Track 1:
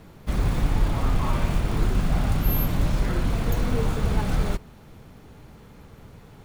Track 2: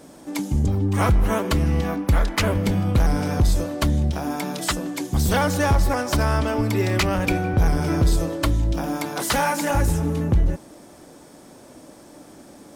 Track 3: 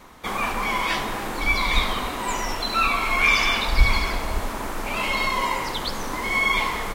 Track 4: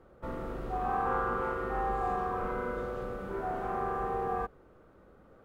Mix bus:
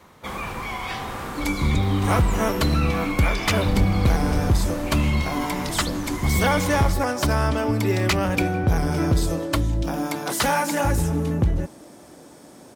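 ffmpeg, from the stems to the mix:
-filter_complex "[0:a]volume=0.266[s0];[1:a]adelay=1100,volume=1[s1];[2:a]acompressor=threshold=0.0794:ratio=6,asubboost=boost=7:cutoff=170,volume=0.596[s2];[3:a]volume=0.794[s3];[s0][s3]amix=inputs=2:normalize=0,acompressor=threshold=0.0316:ratio=6,volume=1[s4];[s1][s2][s4]amix=inputs=3:normalize=0,highpass=54"

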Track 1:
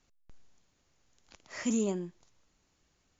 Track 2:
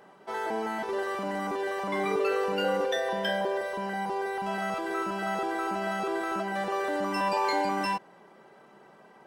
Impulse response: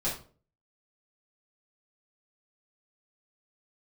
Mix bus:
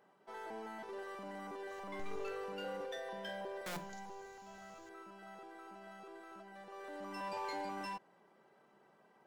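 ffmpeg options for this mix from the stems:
-filter_complex "[0:a]highshelf=f=3200:g=11,aeval=exprs='(mod(70.8*val(0)+1,2)-1)/70.8':c=same,adelay=1700,volume=1.06,asplit=3[s0][s1][s2];[s0]atrim=end=2.3,asetpts=PTS-STARTPTS,afade=t=out:st=2.296:d=0.004:c=hsin[s3];[s1]atrim=start=2.3:end=3.66,asetpts=PTS-STARTPTS,volume=0[s4];[s2]atrim=start=3.66,asetpts=PTS-STARTPTS,afade=t=in:d=0.004:c=hsin[s5];[s3][s4][s5]concat=n=3:v=0:a=1,asplit=2[s6][s7];[s7]volume=0.15[s8];[1:a]aeval=exprs='0.168*(cos(1*acos(clip(val(0)/0.168,-1,1)))-cos(1*PI/2))+0.0119*(cos(6*acos(clip(val(0)/0.168,-1,1)))-cos(6*PI/2))+0.0106*(cos(8*acos(clip(val(0)/0.168,-1,1)))-cos(8*PI/2))':c=same,volume=0.562,afade=t=out:st=3.64:d=0.76:silence=0.398107,afade=t=in:st=6.66:d=0.69:silence=0.334965[s9];[2:a]atrim=start_sample=2205[s10];[s8][s10]afir=irnorm=-1:irlink=0[s11];[s6][s9][s11]amix=inputs=3:normalize=0,asoftclip=type=tanh:threshold=0.0224"

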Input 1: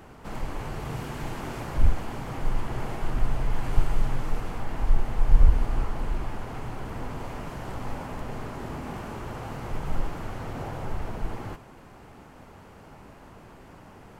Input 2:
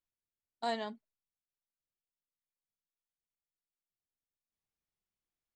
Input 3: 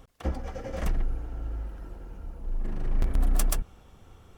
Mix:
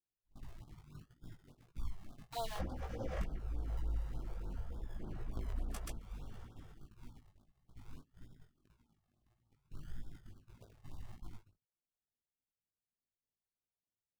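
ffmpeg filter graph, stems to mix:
-filter_complex "[0:a]afwtdn=0.0398,acrusher=samples=36:mix=1:aa=0.000001:lfo=1:lforange=21.6:lforate=0.57,volume=0.237[s0];[1:a]highpass=600,acrusher=bits=6:mix=0:aa=0.000001,adelay=1700,volume=0.75[s1];[2:a]lowpass=f=3600:p=1,adelay=2350,volume=1.26[s2];[s0][s2]amix=inputs=2:normalize=0,agate=range=0.0562:threshold=0.00562:ratio=16:detection=peak,acompressor=threshold=0.02:ratio=2.5,volume=1[s3];[s1][s3]amix=inputs=2:normalize=0,flanger=delay=17:depth=4:speed=1.7,afftfilt=real='re*(1-between(b*sr/1024,220*pow(2300/220,0.5+0.5*sin(2*PI*3.4*pts/sr))/1.41,220*pow(2300/220,0.5+0.5*sin(2*PI*3.4*pts/sr))*1.41))':imag='im*(1-between(b*sr/1024,220*pow(2300/220,0.5+0.5*sin(2*PI*3.4*pts/sr))/1.41,220*pow(2300/220,0.5+0.5*sin(2*PI*3.4*pts/sr))*1.41))':win_size=1024:overlap=0.75"

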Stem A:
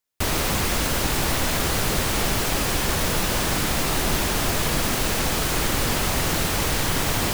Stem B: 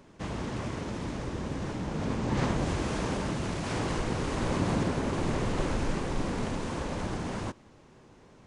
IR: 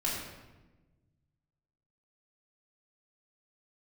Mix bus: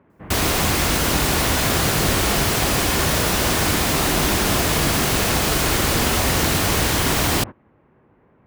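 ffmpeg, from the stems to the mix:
-filter_complex "[0:a]adelay=100,volume=1.26,asplit=2[s0][s1];[s1]volume=0.237[s2];[1:a]asoftclip=type=tanh:threshold=0.0447,lowpass=f=2200:w=0.5412,lowpass=f=2200:w=1.3066,volume=0.891[s3];[2:a]atrim=start_sample=2205[s4];[s2][s4]afir=irnorm=-1:irlink=0[s5];[s0][s3][s5]amix=inputs=3:normalize=0,highpass=45"

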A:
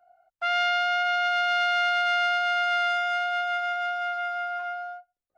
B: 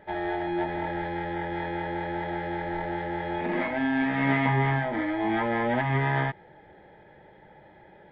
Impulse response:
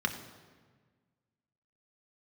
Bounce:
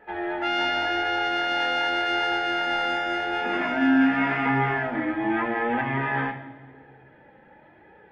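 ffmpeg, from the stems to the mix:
-filter_complex "[0:a]volume=0.75[s0];[1:a]flanger=delay=2.2:depth=1.7:regen=37:speed=0.88:shape=triangular,volume=0.841,asplit=2[s1][s2];[s2]volume=0.708[s3];[2:a]atrim=start_sample=2205[s4];[s3][s4]afir=irnorm=-1:irlink=0[s5];[s0][s1][s5]amix=inputs=3:normalize=0,equalizer=f=2600:t=o:w=0.27:g=7.5"

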